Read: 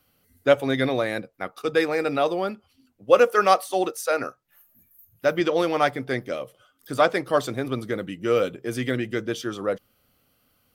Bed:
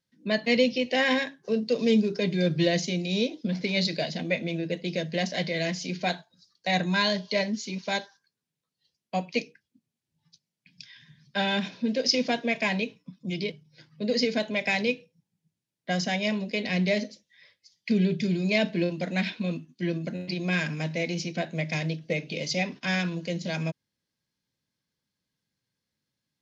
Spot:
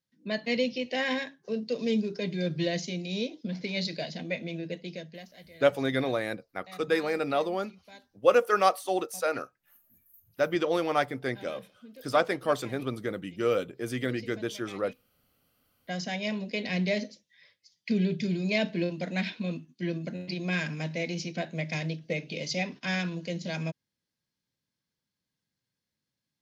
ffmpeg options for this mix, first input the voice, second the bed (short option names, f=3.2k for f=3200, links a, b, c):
-filter_complex "[0:a]adelay=5150,volume=-5dB[a];[1:a]volume=14dB,afade=t=out:st=4.7:d=0.57:silence=0.141254,afade=t=in:st=15.06:d=1.47:silence=0.105925[b];[a][b]amix=inputs=2:normalize=0"